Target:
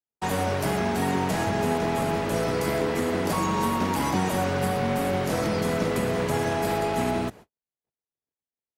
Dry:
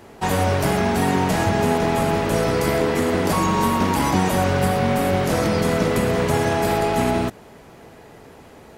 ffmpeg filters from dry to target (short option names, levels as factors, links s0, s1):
-filter_complex "[0:a]agate=range=0.00158:threshold=0.0141:ratio=16:detection=peak,acrossover=split=100|1200|3600[s0][s1][s2][s3];[s0]asoftclip=type=tanh:threshold=0.02[s4];[s4][s1][s2][s3]amix=inputs=4:normalize=0,volume=0.531"